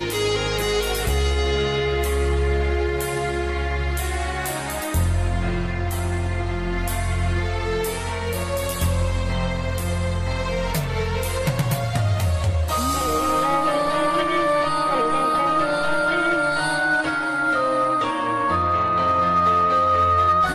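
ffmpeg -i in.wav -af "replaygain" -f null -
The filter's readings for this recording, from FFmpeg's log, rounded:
track_gain = +4.4 dB
track_peak = 0.212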